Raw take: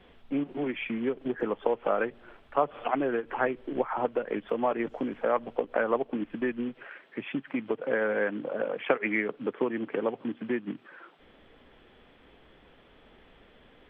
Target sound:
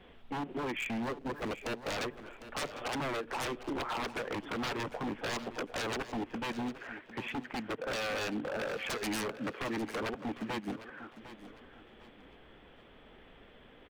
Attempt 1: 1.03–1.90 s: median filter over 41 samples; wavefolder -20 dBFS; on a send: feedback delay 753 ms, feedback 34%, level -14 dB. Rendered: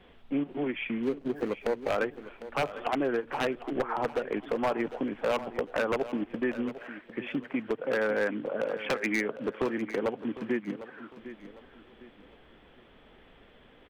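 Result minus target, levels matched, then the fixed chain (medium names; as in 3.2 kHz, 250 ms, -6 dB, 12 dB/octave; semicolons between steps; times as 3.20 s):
wavefolder: distortion -15 dB
1.03–1.90 s: median filter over 41 samples; wavefolder -30 dBFS; on a send: feedback delay 753 ms, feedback 34%, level -14 dB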